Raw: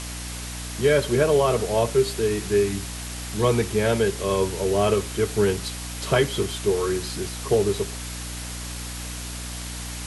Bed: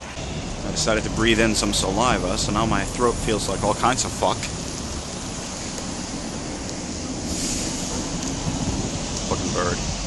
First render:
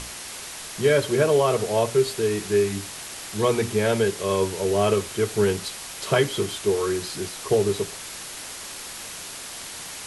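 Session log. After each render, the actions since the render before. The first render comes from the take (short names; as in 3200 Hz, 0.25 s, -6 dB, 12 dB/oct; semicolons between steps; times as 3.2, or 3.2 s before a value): notches 60/120/180/240/300 Hz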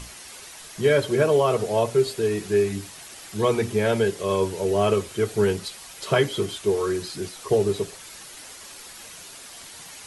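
denoiser 8 dB, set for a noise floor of -37 dBFS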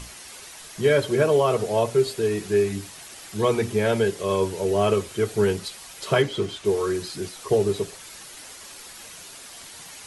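6.22–6.65 air absorption 58 m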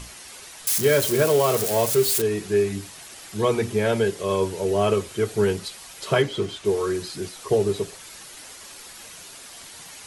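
0.67–2.22 switching spikes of -16.5 dBFS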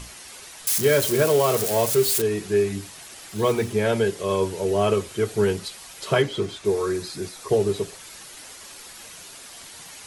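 3.29–3.74 block floating point 5-bit; 6.4–7.49 notch 3000 Hz, Q 8.8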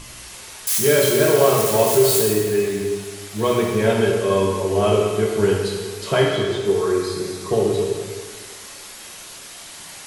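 plate-style reverb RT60 1.6 s, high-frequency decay 0.85×, DRR -2 dB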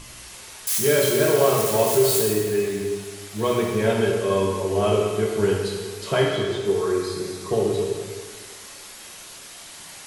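gain -3 dB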